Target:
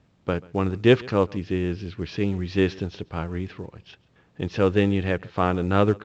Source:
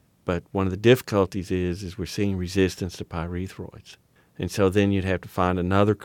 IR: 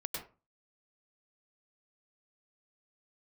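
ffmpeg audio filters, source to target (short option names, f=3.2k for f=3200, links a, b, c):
-af "lowpass=f=4.2k:w=0.5412,lowpass=f=4.2k:w=1.3066,aecho=1:1:136:0.0631" -ar 16000 -c:a pcm_mulaw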